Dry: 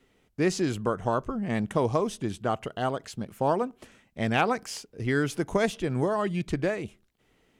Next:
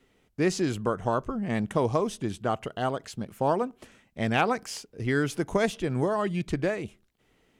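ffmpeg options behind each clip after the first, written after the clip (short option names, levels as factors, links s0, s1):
-af anull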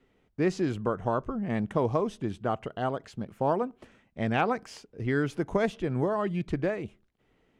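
-af "lowpass=f=2100:p=1,volume=0.891"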